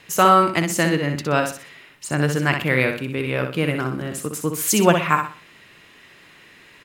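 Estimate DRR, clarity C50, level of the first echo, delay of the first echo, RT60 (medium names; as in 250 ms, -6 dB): no reverb, no reverb, -6.5 dB, 62 ms, no reverb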